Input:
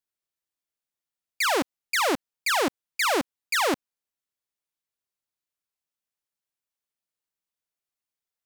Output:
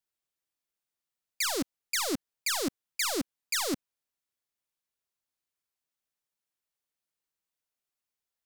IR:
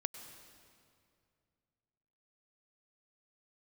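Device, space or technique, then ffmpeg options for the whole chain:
one-band saturation: -filter_complex "[0:a]acrossover=split=280|3300[a][b][c];[b]asoftclip=type=tanh:threshold=-35dB[d];[a][d][c]amix=inputs=3:normalize=0"

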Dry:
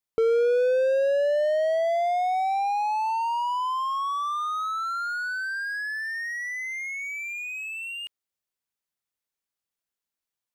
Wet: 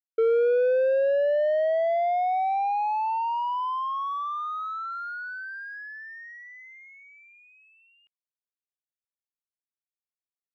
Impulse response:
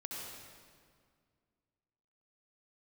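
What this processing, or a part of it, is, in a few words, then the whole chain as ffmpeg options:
hearing-loss simulation: -af "lowpass=2.4k,agate=range=-33dB:threshold=-26dB:ratio=3:detection=peak"

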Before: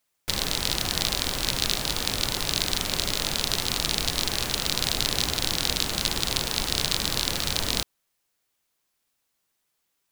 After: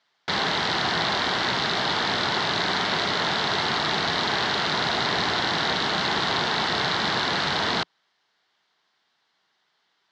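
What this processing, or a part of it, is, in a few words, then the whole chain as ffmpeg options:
overdrive pedal into a guitar cabinet: -filter_complex "[0:a]asplit=2[a][b];[b]highpass=f=720:p=1,volume=27dB,asoftclip=type=tanh:threshold=-2dB[c];[a][c]amix=inputs=2:normalize=0,lowpass=f=3.7k:p=1,volume=-6dB,highpass=93,equalizer=f=170:t=q:w=4:g=3,equalizer=f=290:t=q:w=4:g=-4,equalizer=f=530:t=q:w=4:g=-8,equalizer=f=1.2k:t=q:w=4:g=-3,equalizer=f=2.5k:t=q:w=4:g=-10,lowpass=f=4.5k:w=0.5412,lowpass=f=4.5k:w=1.3066,volume=-4.5dB"

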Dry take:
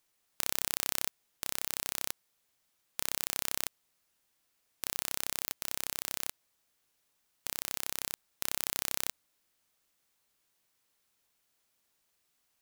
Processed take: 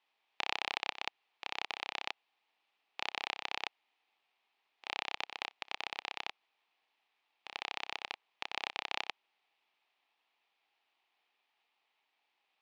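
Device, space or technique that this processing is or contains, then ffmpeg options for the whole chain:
voice changer toy: -af "aeval=exprs='val(0)*sin(2*PI*1500*n/s+1500*0.75/5.9*sin(2*PI*5.9*n/s))':c=same,highpass=480,equalizer=f=550:t=q:w=4:g=-7,equalizer=f=810:t=q:w=4:g=7,equalizer=f=1.5k:t=q:w=4:g=-7,equalizer=f=2.5k:t=q:w=4:g=4,lowpass=f=3.6k:w=0.5412,lowpass=f=3.6k:w=1.3066,volume=6dB"

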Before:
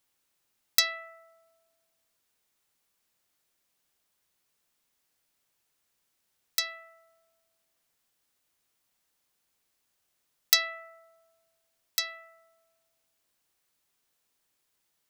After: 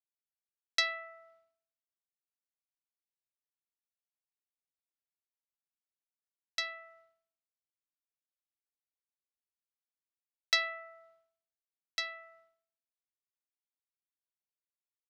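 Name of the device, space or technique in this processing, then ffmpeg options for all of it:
hearing-loss simulation: -af "lowpass=3.5k,agate=range=-33dB:threshold=-59dB:ratio=3:detection=peak,volume=-1dB"

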